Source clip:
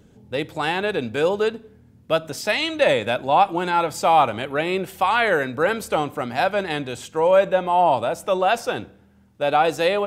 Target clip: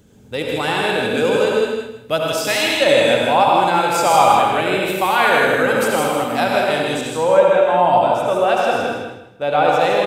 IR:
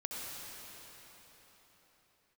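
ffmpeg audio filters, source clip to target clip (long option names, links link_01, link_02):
-filter_complex "[0:a]asetnsamples=nb_out_samples=441:pad=0,asendcmd='7.01 highshelf g -6',highshelf=frequency=5000:gain=8,aecho=1:1:159|318|477|636:0.562|0.152|0.041|0.0111[link_01];[1:a]atrim=start_sample=2205,afade=type=out:start_time=0.28:duration=0.01,atrim=end_sample=12789[link_02];[link_01][link_02]afir=irnorm=-1:irlink=0,volume=4dB"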